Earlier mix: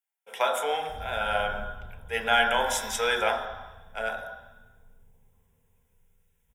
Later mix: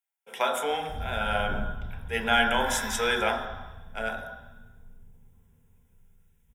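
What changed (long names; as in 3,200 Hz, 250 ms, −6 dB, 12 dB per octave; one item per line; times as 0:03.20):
second sound: send +11.0 dB
master: add low shelf with overshoot 390 Hz +6.5 dB, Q 1.5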